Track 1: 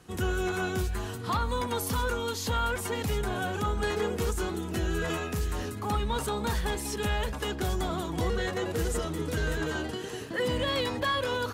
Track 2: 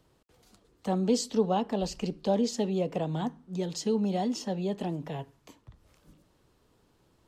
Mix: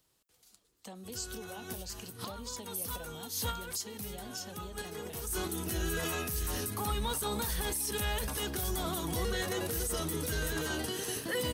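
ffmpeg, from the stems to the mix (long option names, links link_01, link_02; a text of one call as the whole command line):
ffmpeg -i stem1.wav -i stem2.wav -filter_complex "[0:a]highshelf=frequency=5100:gain=9.5,bandreject=frequency=7200:width=6.1,adelay=950,volume=-2dB[link_01];[1:a]acompressor=threshold=-33dB:ratio=3,tiltshelf=frequency=1400:gain=-5.5,volume=-8.5dB,asplit=2[link_02][link_03];[link_03]apad=whole_len=550549[link_04];[link_01][link_04]sidechaincompress=threshold=-60dB:ratio=8:attack=16:release=196[link_05];[link_05][link_02]amix=inputs=2:normalize=0,highshelf=frequency=6400:gain=11.5,alimiter=level_in=1dB:limit=-24dB:level=0:latency=1:release=38,volume=-1dB" out.wav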